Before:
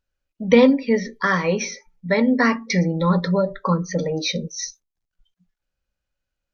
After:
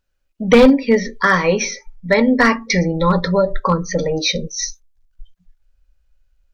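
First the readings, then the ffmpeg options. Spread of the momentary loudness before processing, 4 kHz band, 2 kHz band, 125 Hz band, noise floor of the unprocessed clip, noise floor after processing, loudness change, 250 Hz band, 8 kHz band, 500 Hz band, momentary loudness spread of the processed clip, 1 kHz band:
15 LU, +6.0 dB, +5.5 dB, +1.5 dB, −83 dBFS, −66 dBFS, +4.0 dB, +3.0 dB, can't be measured, +4.5 dB, 13 LU, +6.0 dB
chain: -af "volume=9.5dB,asoftclip=hard,volume=-9.5dB,asubboost=boost=12:cutoff=55,volume=6dB"

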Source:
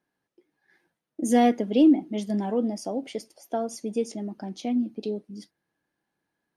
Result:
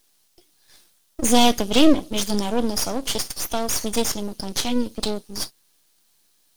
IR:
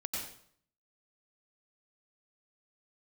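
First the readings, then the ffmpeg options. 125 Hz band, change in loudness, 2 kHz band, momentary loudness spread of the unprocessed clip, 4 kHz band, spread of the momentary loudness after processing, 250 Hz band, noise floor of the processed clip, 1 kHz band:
can't be measured, +3.5 dB, +9.5 dB, 17 LU, +18.0 dB, 12 LU, +1.0 dB, −63 dBFS, +4.5 dB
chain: -filter_complex "[0:a]aexciter=amount=14.1:drive=5.2:freq=2900,acrossover=split=3100[link_01][link_02];[link_02]acompressor=threshold=-25dB:ratio=4:attack=1:release=60[link_03];[link_01][link_03]amix=inputs=2:normalize=0,aeval=exprs='max(val(0),0)':channel_layout=same,volume=7dB"

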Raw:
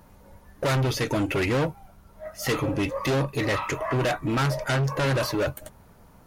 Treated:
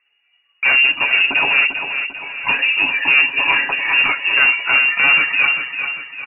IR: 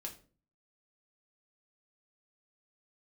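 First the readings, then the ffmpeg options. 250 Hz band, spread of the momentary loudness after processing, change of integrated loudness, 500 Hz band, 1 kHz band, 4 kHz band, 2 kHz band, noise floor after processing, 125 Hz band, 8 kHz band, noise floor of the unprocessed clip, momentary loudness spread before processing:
−9.0 dB, 10 LU, +12.0 dB, −8.5 dB, +6.0 dB, +16.5 dB, +19.5 dB, −63 dBFS, below −15 dB, below −40 dB, −53 dBFS, 6 LU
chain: -filter_complex "[0:a]agate=range=-20dB:threshold=-40dB:ratio=16:detection=peak,aecho=1:1:7.3:0.5,asplit=2[link_01][link_02];[link_02]aecho=0:1:396|792|1188|1584|1980:0.398|0.183|0.0842|0.0388|0.0178[link_03];[link_01][link_03]amix=inputs=2:normalize=0,lowpass=frequency=2500:width_type=q:width=0.5098,lowpass=frequency=2500:width_type=q:width=0.6013,lowpass=frequency=2500:width_type=q:width=0.9,lowpass=frequency=2500:width_type=q:width=2.563,afreqshift=-2900,volume=7dB"

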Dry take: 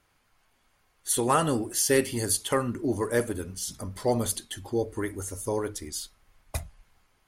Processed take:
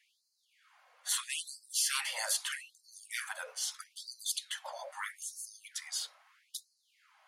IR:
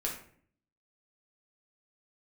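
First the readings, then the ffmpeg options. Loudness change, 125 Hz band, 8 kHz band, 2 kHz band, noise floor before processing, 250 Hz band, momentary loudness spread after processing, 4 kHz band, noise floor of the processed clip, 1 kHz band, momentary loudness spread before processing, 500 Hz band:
−8.0 dB, below −40 dB, −5.0 dB, −3.5 dB, −69 dBFS, below −40 dB, 14 LU, 0.0 dB, −77 dBFS, −14.5 dB, 13 LU, −24.5 dB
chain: -af "aemphasis=mode=reproduction:type=75kf,afftfilt=real='re*lt(hypot(re,im),0.0398)':imag='im*lt(hypot(re,im),0.0398)':win_size=1024:overlap=0.75,afftfilt=real='re*gte(b*sr/1024,460*pow(4100/460,0.5+0.5*sin(2*PI*0.78*pts/sr)))':imag='im*gte(b*sr/1024,460*pow(4100/460,0.5+0.5*sin(2*PI*0.78*pts/sr)))':win_size=1024:overlap=0.75,volume=8.5dB"

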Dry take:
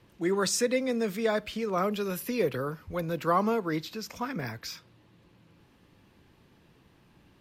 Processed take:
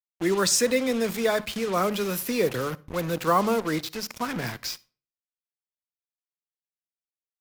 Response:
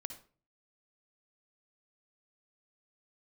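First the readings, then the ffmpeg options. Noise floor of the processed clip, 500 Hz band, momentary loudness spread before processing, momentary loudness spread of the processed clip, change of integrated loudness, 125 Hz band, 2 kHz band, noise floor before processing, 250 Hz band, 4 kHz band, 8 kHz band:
below −85 dBFS, +3.5 dB, 10 LU, 10 LU, +4.0 dB, +3.0 dB, +5.0 dB, −62 dBFS, +3.0 dB, +7.0 dB, +7.5 dB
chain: -filter_complex "[0:a]highshelf=frequency=2900:gain=4.5,bandreject=frequency=71.44:width_type=h:width=4,bandreject=frequency=142.88:width_type=h:width=4,bandreject=frequency=214.32:width_type=h:width=4,acrusher=bits=5:mix=0:aa=0.5,asplit=2[link_01][link_02];[1:a]atrim=start_sample=2205[link_03];[link_02][link_03]afir=irnorm=-1:irlink=0,volume=-10dB[link_04];[link_01][link_04]amix=inputs=2:normalize=0,volume=1.5dB"

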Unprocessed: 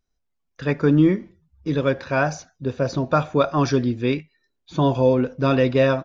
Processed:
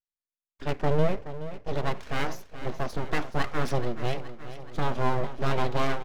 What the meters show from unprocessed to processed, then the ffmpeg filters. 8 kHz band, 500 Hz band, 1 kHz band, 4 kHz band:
can't be measured, −10.0 dB, −4.5 dB, −4.5 dB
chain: -filter_complex "[0:a]lowshelf=frequency=290:gain=5.5,aeval=exprs='abs(val(0))':channel_layout=same,agate=range=-31dB:threshold=-39dB:ratio=16:detection=peak,asplit=2[link_01][link_02];[link_02]aecho=0:1:425|850|1275|1700|2125|2550:0.224|0.13|0.0753|0.0437|0.0253|0.0147[link_03];[link_01][link_03]amix=inputs=2:normalize=0,volume=-7.5dB"

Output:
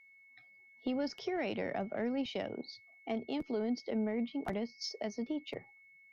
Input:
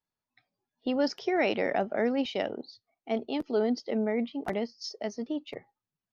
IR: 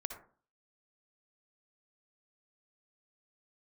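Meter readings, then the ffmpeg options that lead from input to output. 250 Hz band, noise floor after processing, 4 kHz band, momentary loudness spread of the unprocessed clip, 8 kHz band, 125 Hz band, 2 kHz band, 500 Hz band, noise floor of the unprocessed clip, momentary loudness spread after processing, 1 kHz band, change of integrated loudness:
−5.0 dB, −62 dBFS, −5.0 dB, 10 LU, can't be measured, −3.0 dB, −8.5 dB, −8.5 dB, below −85 dBFS, 7 LU, −8.5 dB, −7.0 dB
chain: -filter_complex "[0:a]acrossover=split=170[link_01][link_02];[link_02]acompressor=threshold=-40dB:ratio=3[link_03];[link_01][link_03]amix=inputs=2:normalize=0,aeval=exprs='val(0)+0.000891*sin(2*PI*2200*n/s)':channel_layout=same,asoftclip=type=tanh:threshold=-25dB,volume=2.5dB"

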